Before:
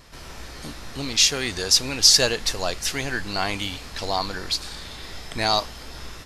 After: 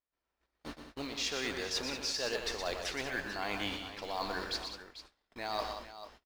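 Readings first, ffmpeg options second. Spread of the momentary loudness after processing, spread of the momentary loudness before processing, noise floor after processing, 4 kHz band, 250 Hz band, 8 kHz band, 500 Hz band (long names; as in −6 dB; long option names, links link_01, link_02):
15 LU, 22 LU, below −85 dBFS, −16.5 dB, −10.0 dB, −20.5 dB, −9.5 dB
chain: -filter_complex "[0:a]highpass=frequency=64:poles=1,aemphasis=mode=reproduction:type=75fm,agate=range=-42dB:threshold=-35dB:ratio=16:detection=peak,equalizer=frequency=120:width=0.85:gain=-12,areverse,acompressor=threshold=-31dB:ratio=6,areverse,acrusher=bits=6:mode=log:mix=0:aa=0.000001,asplit=2[link_01][link_02];[link_02]aecho=0:1:120|187|443:0.447|0.299|0.237[link_03];[link_01][link_03]amix=inputs=2:normalize=0,volume=-2.5dB"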